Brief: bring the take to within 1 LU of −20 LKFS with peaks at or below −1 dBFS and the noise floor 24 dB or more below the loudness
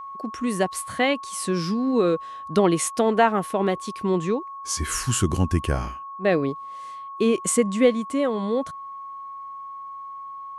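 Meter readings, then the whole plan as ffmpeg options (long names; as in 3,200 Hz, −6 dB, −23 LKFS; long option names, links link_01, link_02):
interfering tone 1,100 Hz; level of the tone −34 dBFS; integrated loudness −23.5 LKFS; sample peak −5.5 dBFS; target loudness −20.0 LKFS
→ -af "bandreject=frequency=1100:width=30"
-af "volume=3.5dB"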